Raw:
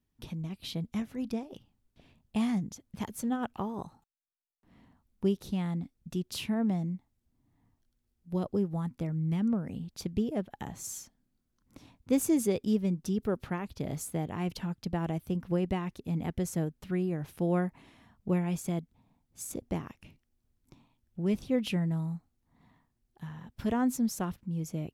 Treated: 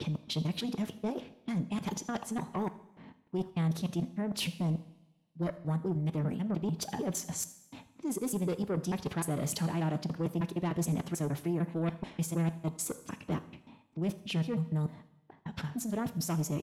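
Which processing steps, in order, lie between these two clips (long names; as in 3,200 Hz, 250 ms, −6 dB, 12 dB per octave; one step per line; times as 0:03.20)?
slices reordered back to front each 223 ms, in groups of 2
high-pass filter 150 Hz 12 dB per octave
noise gate with hold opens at −59 dBFS
reversed playback
downward compressor 12 to 1, threshold −38 dBFS, peak gain reduction 17.5 dB
reversed playback
sine wavefolder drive 7 dB, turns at −26.5 dBFS
phase-vocoder pitch shift with formants kept −1 semitone
low-pass that shuts in the quiet parts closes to 2,800 Hz, open at −31 dBFS
tempo change 1.5×
on a send: single-tap delay 80 ms −21 dB
on the sum: coupled-rooms reverb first 0.84 s, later 2.3 s, from −25 dB, DRR 11.5 dB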